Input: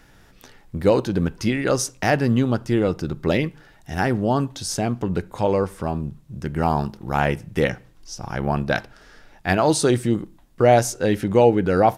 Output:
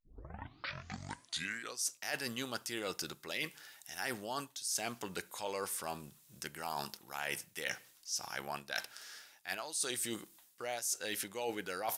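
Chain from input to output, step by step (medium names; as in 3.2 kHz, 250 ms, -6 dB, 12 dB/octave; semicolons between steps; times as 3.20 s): tape start-up on the opening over 1.88 s; differentiator; reverse; compression 10:1, threshold -43 dBFS, peak gain reduction 21.5 dB; reverse; trim +8.5 dB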